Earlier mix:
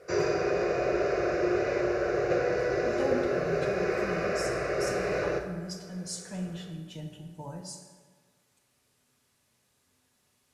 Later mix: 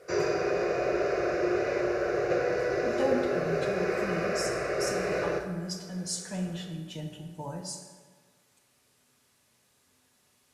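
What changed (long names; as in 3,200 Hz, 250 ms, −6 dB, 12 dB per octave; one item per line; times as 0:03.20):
speech +4.0 dB
master: add low-shelf EQ 140 Hz −5 dB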